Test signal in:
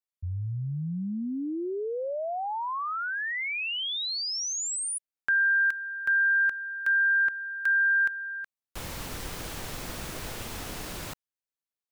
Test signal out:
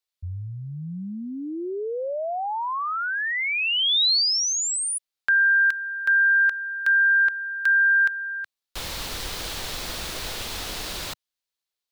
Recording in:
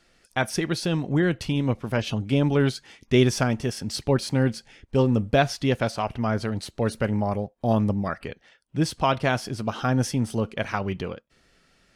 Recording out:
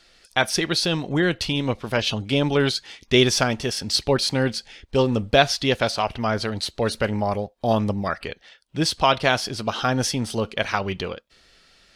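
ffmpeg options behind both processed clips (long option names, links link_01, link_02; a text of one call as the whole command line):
ffmpeg -i in.wav -af "equalizer=frequency=125:width_type=o:width=1:gain=-6,equalizer=frequency=250:width_type=o:width=1:gain=-4,equalizer=frequency=4000:width_type=o:width=1:gain=8,volume=4dB" out.wav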